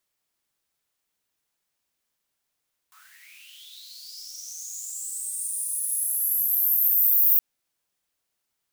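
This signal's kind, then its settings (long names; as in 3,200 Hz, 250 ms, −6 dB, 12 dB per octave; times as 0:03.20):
filter sweep on noise white, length 4.47 s highpass, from 1,100 Hz, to 15,000 Hz, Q 11, linear, gain ramp +33 dB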